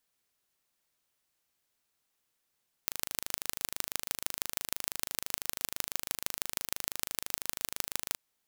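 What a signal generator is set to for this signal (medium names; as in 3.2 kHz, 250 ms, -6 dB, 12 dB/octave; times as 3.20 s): pulse train 26 per s, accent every 4, -2 dBFS 5.28 s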